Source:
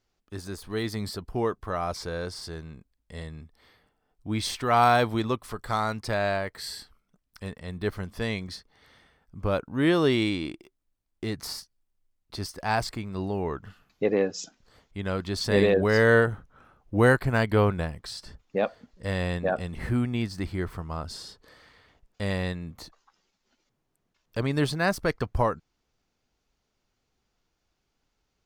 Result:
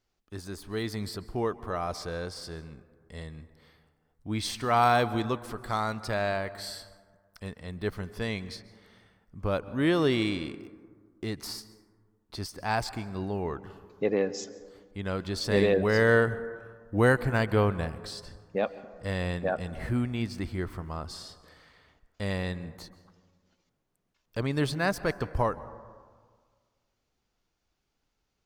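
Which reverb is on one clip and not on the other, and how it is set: plate-style reverb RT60 1.7 s, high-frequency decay 0.3×, pre-delay 0.12 s, DRR 16 dB; gain -2.5 dB

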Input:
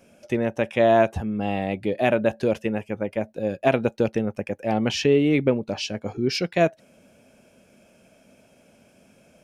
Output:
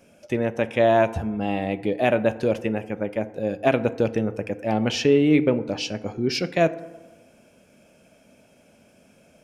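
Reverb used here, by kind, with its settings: FDN reverb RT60 1.2 s, low-frequency decay 0.9×, high-frequency decay 0.4×, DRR 12.5 dB

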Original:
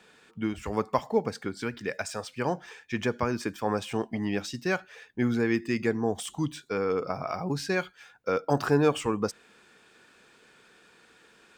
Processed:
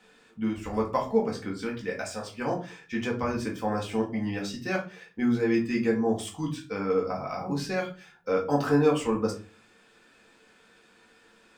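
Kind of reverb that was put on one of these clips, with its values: shoebox room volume 180 m³, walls furnished, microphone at 2 m; gain -5 dB

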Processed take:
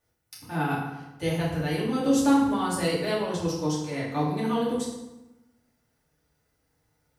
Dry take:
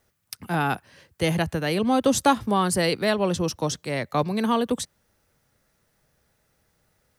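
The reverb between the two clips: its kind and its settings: FDN reverb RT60 1 s, low-frequency decay 1.25×, high-frequency decay 0.7×, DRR -7 dB; gain -12.5 dB

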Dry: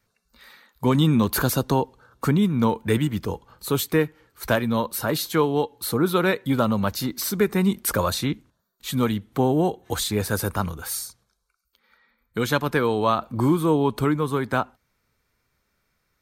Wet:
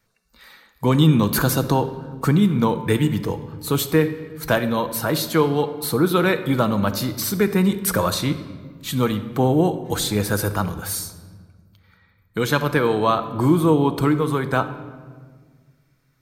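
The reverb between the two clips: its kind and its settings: shoebox room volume 1900 m³, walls mixed, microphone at 0.65 m; gain +2 dB

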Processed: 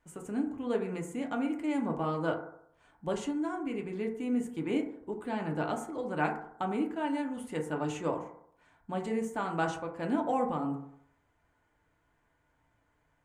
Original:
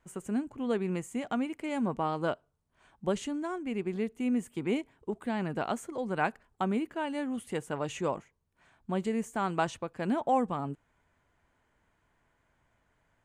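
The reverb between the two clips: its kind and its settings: FDN reverb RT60 0.7 s, low-frequency decay 0.85×, high-frequency decay 0.3×, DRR 1.5 dB; gain -3.5 dB

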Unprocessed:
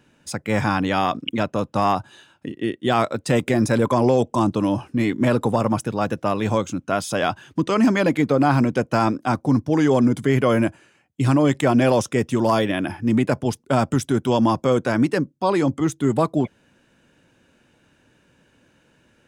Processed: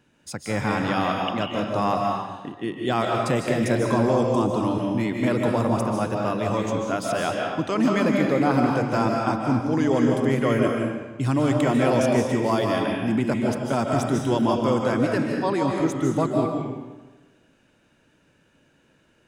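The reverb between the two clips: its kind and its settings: digital reverb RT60 1.2 s, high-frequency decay 0.8×, pre-delay 0.11 s, DRR 0 dB; gain -5 dB

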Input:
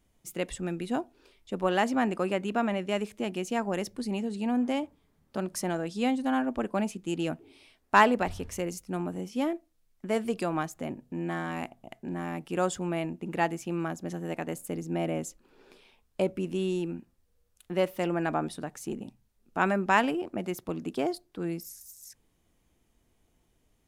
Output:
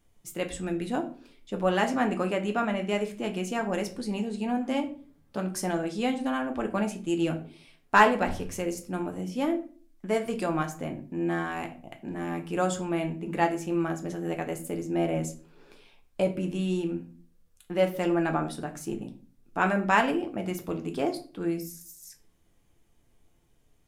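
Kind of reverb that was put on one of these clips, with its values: shoebox room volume 31 m³, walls mixed, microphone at 0.33 m

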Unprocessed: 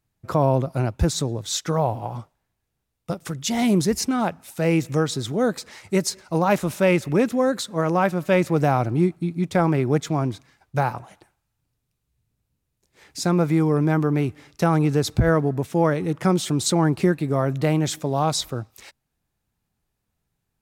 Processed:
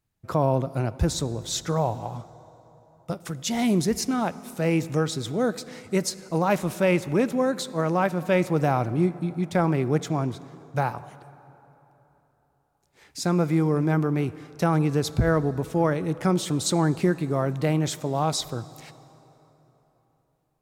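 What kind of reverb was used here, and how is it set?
plate-style reverb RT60 3.7 s, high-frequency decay 0.6×, DRR 16.5 dB; gain -3 dB

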